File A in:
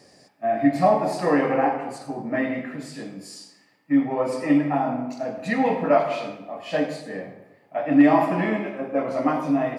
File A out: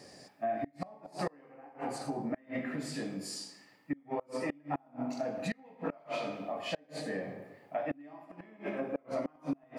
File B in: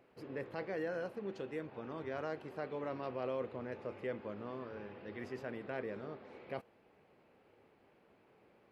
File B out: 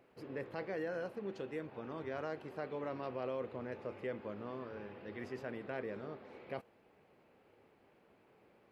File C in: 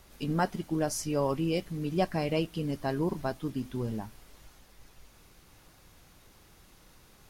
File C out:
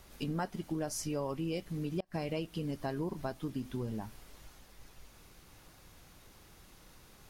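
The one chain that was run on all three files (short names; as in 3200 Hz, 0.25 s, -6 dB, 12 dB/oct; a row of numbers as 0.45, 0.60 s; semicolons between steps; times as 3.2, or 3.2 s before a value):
flipped gate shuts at -14 dBFS, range -32 dB; compressor 3:1, threshold -34 dBFS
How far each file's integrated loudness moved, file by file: -15.5, -0.5, -6.0 LU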